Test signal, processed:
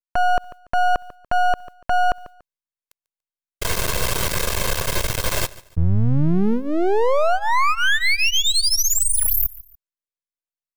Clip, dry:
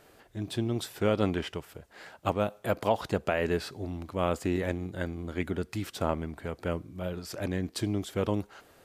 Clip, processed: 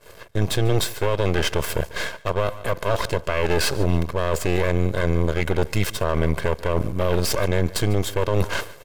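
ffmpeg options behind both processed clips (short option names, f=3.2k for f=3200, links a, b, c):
-filter_complex "[0:a]agate=range=-33dB:threshold=-48dB:ratio=3:detection=peak,aecho=1:1:1.9:0.92,areverse,acompressor=threshold=-39dB:ratio=8,areverse,aeval=exprs='max(val(0),0)':c=same,asplit=2[a][b];[b]aecho=0:1:144|288:0.075|0.0217[c];[a][c]amix=inputs=2:normalize=0,alimiter=level_in=35dB:limit=-1dB:release=50:level=0:latency=1,volume=-8dB"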